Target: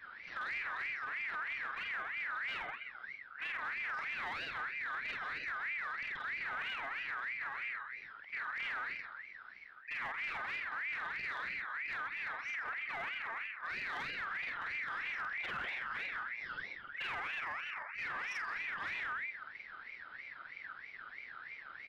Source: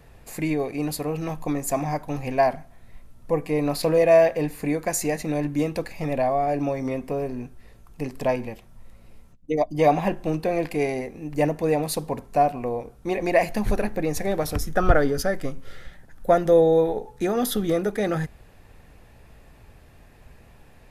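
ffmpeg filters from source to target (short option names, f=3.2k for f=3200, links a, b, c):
-filter_complex "[0:a]afftfilt=real='re':imag='-im':win_size=4096:overlap=0.75,equalizer=f=130:t=o:w=0.91:g=14,asetrate=42116,aresample=44100,acompressor=threshold=-35dB:ratio=4,aresample=8000,aresample=44100,bandreject=f=50:t=h:w=6,bandreject=f=100:t=h:w=6,asplit=2[a][b];[b]adelay=129,lowpass=f=1.5k:p=1,volume=-3.5dB,asplit=2[c][d];[d]adelay=129,lowpass=f=1.5k:p=1,volume=0.36,asplit=2[e][f];[f]adelay=129,lowpass=f=1.5k:p=1,volume=0.36,asplit=2[g][h];[h]adelay=129,lowpass=f=1.5k:p=1,volume=0.36,asplit=2[i][j];[j]adelay=129,lowpass=f=1.5k:p=1,volume=0.36[k];[c][e][g][i][k]amix=inputs=5:normalize=0[l];[a][l]amix=inputs=2:normalize=0,adynamicequalizer=threshold=0.00316:dfrequency=500:dqfactor=1.3:tfrequency=500:tqfactor=1.3:attack=5:release=100:ratio=0.375:range=3:mode=cutabove:tftype=bell,asoftclip=type=hard:threshold=-35.5dB,aeval=exprs='val(0)*sin(2*PI*1800*n/s+1800*0.25/3.1*sin(2*PI*3.1*n/s))':c=same,volume=1dB"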